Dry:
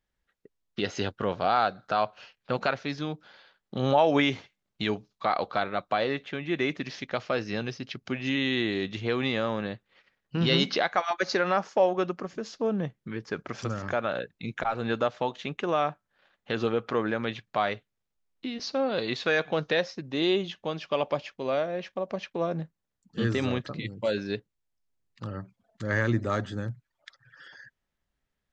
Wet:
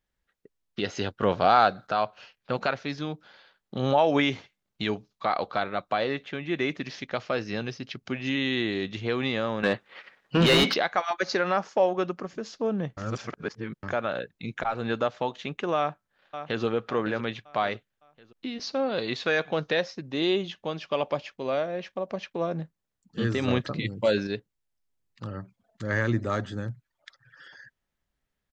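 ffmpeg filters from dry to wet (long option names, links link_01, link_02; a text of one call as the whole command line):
ffmpeg -i in.wav -filter_complex "[0:a]asettb=1/sr,asplit=3[link_01][link_02][link_03];[link_01]atrim=end=1.224[link_04];[link_02]atrim=start=1.22:end=1.87,asetpts=PTS-STARTPTS,afade=type=in:duration=0.004:curve=qsin,afade=type=out:start_time=0.646:duration=0.004:curve=qsin,acontrast=26[link_05];[link_03]atrim=start=1.866[link_06];[link_04][link_05]acrossfade=duration=0.004:curve1=hsin:curve2=qsin[link_07];[link_07][link_06]acrossfade=duration=0.004:curve1=qsin:curve2=hsin,asettb=1/sr,asplit=3[link_08][link_09][link_10];[link_08]atrim=end=9.634[link_11];[link_09]atrim=start=9.63:end=10.74,asetpts=PTS-STARTPTS,afade=type=in:duration=0.004:curve=qsin,afade=type=out:start_time=1.106:duration=0.004:curve=qsin,asplit=2[link_12][link_13];[link_13]highpass=frequency=720:poles=1,volume=25dB,asoftclip=type=tanh:threshold=-8.5dB[link_14];[link_12][link_14]amix=inputs=2:normalize=0,lowpass=frequency=1900:poles=1,volume=-6dB[link_15];[link_10]atrim=start=10.736[link_16];[link_11][link_15]acrossfade=duration=0.004:curve1=hsin:curve2=qsin[link_17];[link_17][link_16]acrossfade=duration=0.004:curve1=qsin:curve2=hsin,asplit=2[link_18][link_19];[link_19]afade=type=in:start_time=15.77:duration=0.01,afade=type=out:start_time=16.64:duration=0.01,aecho=0:1:560|1120|1680|2240:0.316228|0.126491|0.0505964|0.0202386[link_20];[link_18][link_20]amix=inputs=2:normalize=0,asplit=5[link_21][link_22][link_23][link_24][link_25];[link_21]atrim=end=12.972[link_26];[link_22]atrim=start=12.968:end=13.832,asetpts=PTS-STARTPTS,areverse[link_27];[link_23]atrim=start=13.828:end=23.482[link_28];[link_24]atrim=start=23.478:end=24.272,asetpts=PTS-STARTPTS,volume=4.5dB[link_29];[link_25]atrim=start=24.268[link_30];[link_26][link_27]acrossfade=duration=0.004:curve1=hsin:curve2=hsin[link_31];[link_31][link_28]acrossfade=duration=0.004:curve1=hsin:curve2=hsin[link_32];[link_32][link_29]acrossfade=duration=0.004:curve1=hsin:curve2=hsin[link_33];[link_33][link_30]acrossfade=duration=0.004:curve1=hsin:curve2=hsin" out.wav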